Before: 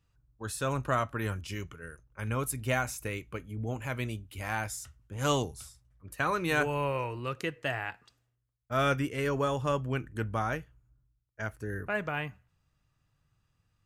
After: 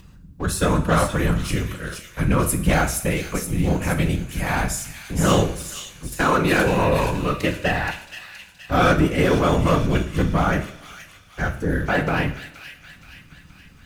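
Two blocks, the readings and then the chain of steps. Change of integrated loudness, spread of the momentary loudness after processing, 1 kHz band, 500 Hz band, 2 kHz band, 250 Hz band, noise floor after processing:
+11.5 dB, 15 LU, +10.0 dB, +10.5 dB, +10.0 dB, +15.0 dB, -48 dBFS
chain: low shelf 400 Hz +5 dB; sample leveller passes 2; upward compressor, threshold -31 dBFS; whisperiser; thin delay 0.473 s, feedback 52%, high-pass 3200 Hz, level -4 dB; two-slope reverb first 0.48 s, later 1.8 s, from -18 dB, DRR 5.5 dB; gain +2.5 dB

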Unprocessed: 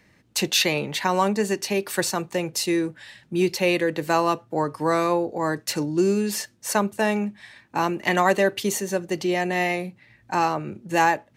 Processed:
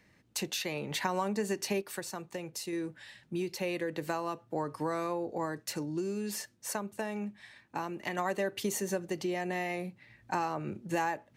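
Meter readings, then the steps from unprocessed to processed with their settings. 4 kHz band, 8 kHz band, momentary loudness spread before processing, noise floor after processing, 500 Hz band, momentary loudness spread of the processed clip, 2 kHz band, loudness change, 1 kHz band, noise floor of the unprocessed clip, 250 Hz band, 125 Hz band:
-13.0 dB, -10.5 dB, 7 LU, -66 dBFS, -11.5 dB, 7 LU, -12.5 dB, -11.5 dB, -12.0 dB, -59 dBFS, -11.0 dB, -10.5 dB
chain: compressor, threshold -24 dBFS, peak gain reduction 10 dB; random-step tremolo 1.1 Hz; dynamic EQ 3600 Hz, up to -3 dB, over -42 dBFS, Q 0.92; gain -3.5 dB

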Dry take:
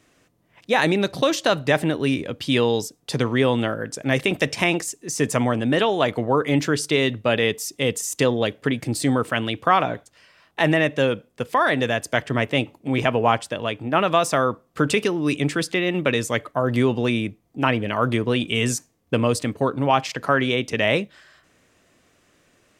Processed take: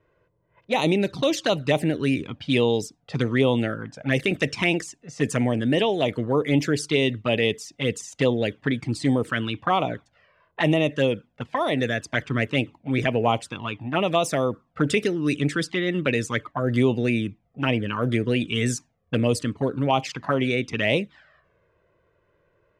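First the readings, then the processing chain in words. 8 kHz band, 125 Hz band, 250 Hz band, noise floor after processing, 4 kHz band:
-6.0 dB, -0.5 dB, -1.0 dB, -68 dBFS, -3.0 dB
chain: low-pass opened by the level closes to 1400 Hz, open at -16.5 dBFS; envelope flanger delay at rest 2 ms, full sweep at -14.5 dBFS

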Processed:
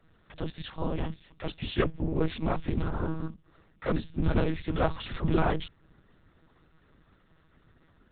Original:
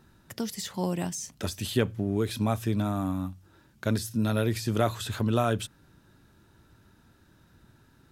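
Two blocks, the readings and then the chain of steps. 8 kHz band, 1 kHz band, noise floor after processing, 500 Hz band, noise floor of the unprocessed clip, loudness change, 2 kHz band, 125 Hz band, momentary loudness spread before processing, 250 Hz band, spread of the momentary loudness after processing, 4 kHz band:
under -40 dB, -1.0 dB, -64 dBFS, -1.5 dB, -61 dBFS, -2.0 dB, 0.0 dB, -2.5 dB, 8 LU, -3.0 dB, 11 LU, -4.5 dB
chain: noise vocoder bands 16; monotone LPC vocoder at 8 kHz 160 Hz

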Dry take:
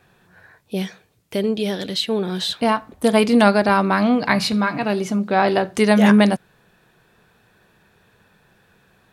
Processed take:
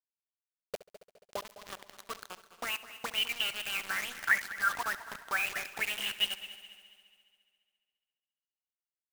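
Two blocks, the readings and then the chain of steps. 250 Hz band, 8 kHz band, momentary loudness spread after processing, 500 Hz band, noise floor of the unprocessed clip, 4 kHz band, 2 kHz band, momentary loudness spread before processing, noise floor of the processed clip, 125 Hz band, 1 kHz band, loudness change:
-39.0 dB, -7.5 dB, 17 LU, -27.5 dB, -59 dBFS, -7.5 dB, -7.5 dB, 14 LU, under -85 dBFS, under -30 dB, -18.0 dB, -14.5 dB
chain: notch 1000 Hz, Q 7.2; in parallel at -3 dB: limiter -10 dBFS, peak gain reduction 7.5 dB; on the sum: tube stage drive 9 dB, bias 0.7; auto-wah 380–2900 Hz, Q 15, up, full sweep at -12.5 dBFS; bit-crush 7-bit; on a send: multi-head echo 69 ms, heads first and third, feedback 62%, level -17 dB; on the sum: warbling echo 0.216 s, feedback 33%, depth 133 cents, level -19.5 dB; gain +4.5 dB

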